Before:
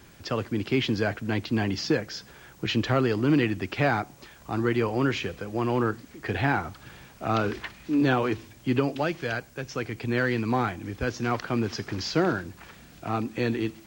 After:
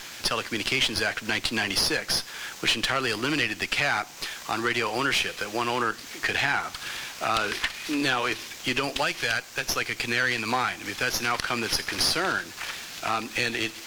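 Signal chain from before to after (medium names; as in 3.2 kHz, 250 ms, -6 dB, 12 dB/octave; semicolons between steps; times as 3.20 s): frequency weighting ITU-R 468; in parallel at -2 dB: peak limiter -19 dBFS, peak gain reduction 10.5 dB; on the sum: compression 2:1, threshold -31 dBFS, peak gain reduction 9 dB; sliding maximum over 3 samples; trim +4.5 dB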